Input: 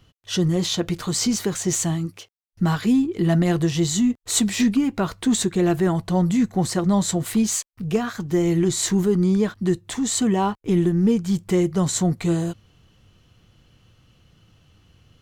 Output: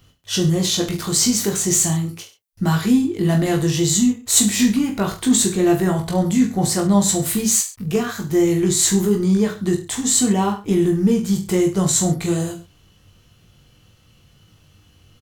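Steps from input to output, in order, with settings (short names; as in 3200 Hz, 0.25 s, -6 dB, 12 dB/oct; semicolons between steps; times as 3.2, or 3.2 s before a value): high shelf 7000 Hz +11 dB; on a send: reverse bouncing-ball echo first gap 20 ms, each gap 1.15×, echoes 5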